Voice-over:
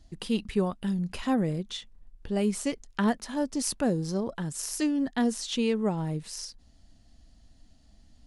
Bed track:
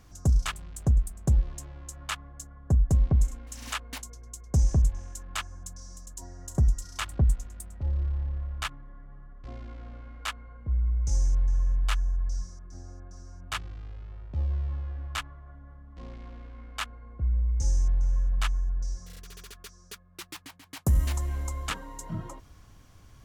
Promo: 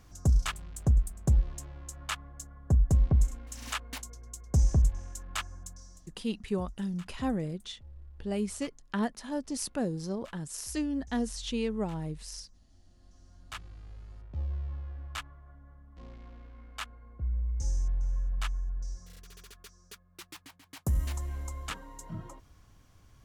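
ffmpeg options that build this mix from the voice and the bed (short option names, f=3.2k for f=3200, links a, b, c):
-filter_complex "[0:a]adelay=5950,volume=-5dB[a];[1:a]volume=14.5dB,afade=t=out:st=5.51:d=0.73:silence=0.1,afade=t=in:st=12.88:d=1.12:silence=0.158489[b];[a][b]amix=inputs=2:normalize=0"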